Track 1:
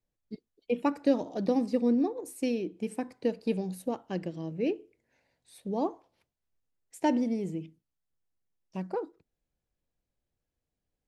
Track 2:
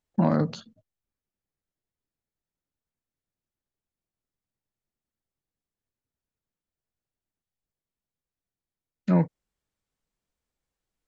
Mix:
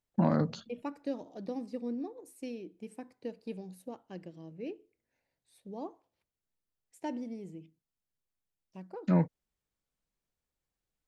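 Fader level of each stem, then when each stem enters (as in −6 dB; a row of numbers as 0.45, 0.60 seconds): −11.0, −4.5 decibels; 0.00, 0.00 seconds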